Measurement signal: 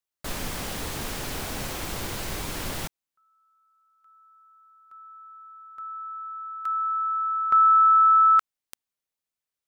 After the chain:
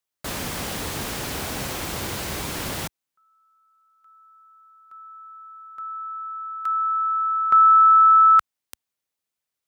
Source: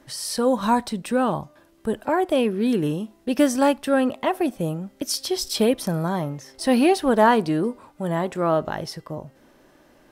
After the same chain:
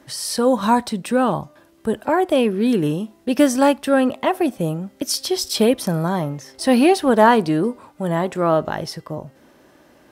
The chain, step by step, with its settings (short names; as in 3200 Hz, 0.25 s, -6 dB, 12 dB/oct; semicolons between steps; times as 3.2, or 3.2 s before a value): HPF 57 Hz; gain +3.5 dB